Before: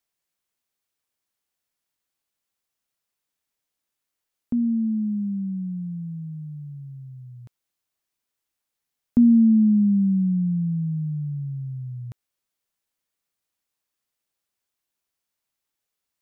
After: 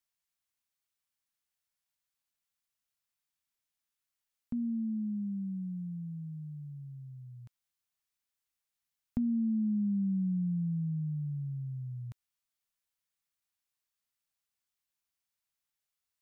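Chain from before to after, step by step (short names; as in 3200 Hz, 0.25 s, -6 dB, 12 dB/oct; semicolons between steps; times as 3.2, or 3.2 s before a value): compressor 3:1, threshold -20 dBFS, peak gain reduction 6 dB; bell 400 Hz -10 dB 1.6 oct; gain -5 dB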